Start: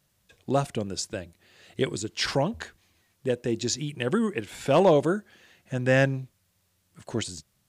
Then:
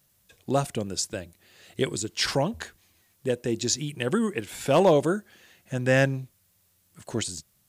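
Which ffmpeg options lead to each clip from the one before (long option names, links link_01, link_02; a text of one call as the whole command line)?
ffmpeg -i in.wav -af "highshelf=frequency=8800:gain=11.5" out.wav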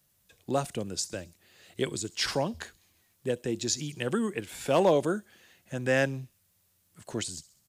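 ffmpeg -i in.wav -filter_complex "[0:a]acrossover=split=200|3100[link_01][link_02][link_03];[link_01]alimiter=level_in=7dB:limit=-24dB:level=0:latency=1,volume=-7dB[link_04];[link_03]aecho=1:1:66|132|198|264|330:0.133|0.0707|0.0375|0.0199|0.0105[link_05];[link_04][link_02][link_05]amix=inputs=3:normalize=0,volume=-3.5dB" out.wav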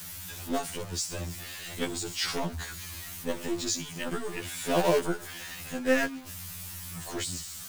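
ffmpeg -i in.wav -filter_complex "[0:a]aeval=exprs='val(0)+0.5*0.0224*sgn(val(0))':channel_layout=same,acrossover=split=320|680|3100[link_01][link_02][link_03][link_04];[link_02]acrusher=bits=5:dc=4:mix=0:aa=0.000001[link_05];[link_01][link_05][link_03][link_04]amix=inputs=4:normalize=0,afftfilt=real='re*2*eq(mod(b,4),0)':imag='im*2*eq(mod(b,4),0)':win_size=2048:overlap=0.75" out.wav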